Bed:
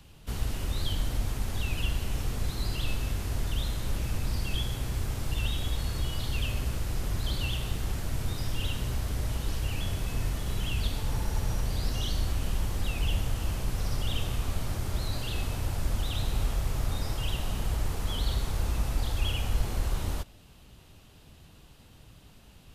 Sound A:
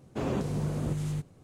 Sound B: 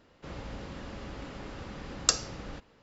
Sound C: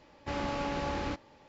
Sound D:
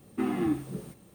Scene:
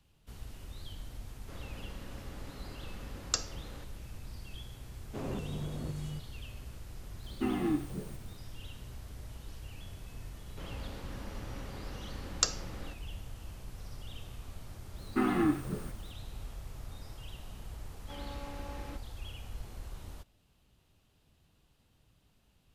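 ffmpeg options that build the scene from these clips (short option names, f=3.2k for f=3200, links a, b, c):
-filter_complex "[2:a]asplit=2[a][b];[4:a]asplit=2[c][d];[0:a]volume=-15dB[e];[d]equalizer=f=1.4k:t=o:w=0.86:g=9[f];[3:a]aecho=1:1:3.8:0.34[g];[a]atrim=end=2.82,asetpts=PTS-STARTPTS,volume=-7dB,afade=t=in:d=0.004:c=hsin,afade=t=out:st=2.816:d=0.004:c=hsin,adelay=1250[h];[1:a]atrim=end=1.43,asetpts=PTS-STARTPTS,volume=-8dB,afade=t=in:d=0.004:c=hsin,afade=t=out:st=1.426:d=0.004:c=hsin,adelay=4980[i];[c]atrim=end=1.14,asetpts=PTS-STARTPTS,volume=-3dB,afade=t=in:d=0.004:c=hsin,afade=t=out:st=1.136:d=0.004:c=hsin,adelay=7230[j];[b]atrim=end=2.82,asetpts=PTS-STARTPTS,volume=-4dB,afade=t=in:d=0.004:c=hsin,afade=t=out:st=2.816:d=0.004:c=hsin,adelay=455994S[k];[f]atrim=end=1.14,asetpts=PTS-STARTPTS,volume=-0.5dB,afade=t=in:d=0.004:c=hsin,afade=t=out:st=1.136:d=0.004:c=hsin,adelay=14980[l];[g]atrim=end=1.48,asetpts=PTS-STARTPTS,volume=-13dB,afade=t=in:d=0.004:c=hsin,afade=t=out:st=1.476:d=0.004:c=hsin,adelay=17820[m];[e][h][i][j][k][l][m]amix=inputs=7:normalize=0"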